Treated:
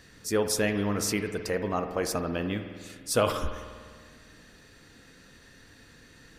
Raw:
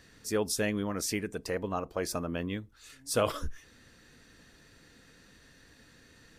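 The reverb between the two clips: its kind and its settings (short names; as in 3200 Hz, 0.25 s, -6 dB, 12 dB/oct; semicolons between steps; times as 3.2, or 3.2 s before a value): spring tank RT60 1.8 s, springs 49 ms, chirp 45 ms, DRR 7 dB; gain +3.5 dB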